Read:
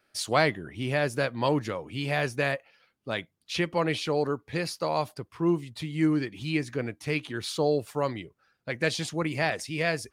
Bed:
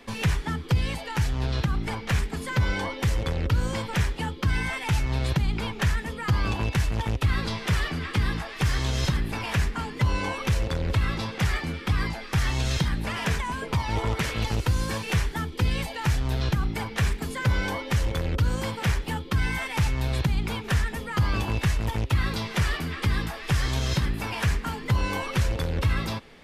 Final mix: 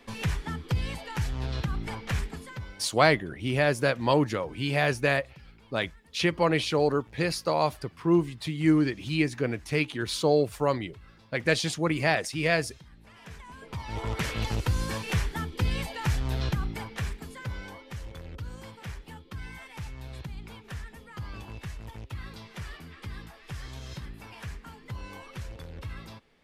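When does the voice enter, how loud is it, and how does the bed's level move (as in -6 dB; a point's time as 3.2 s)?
2.65 s, +2.5 dB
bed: 2.27 s -5 dB
2.97 s -27 dB
12.89 s -27 dB
14.22 s -3 dB
16.44 s -3 dB
17.79 s -15 dB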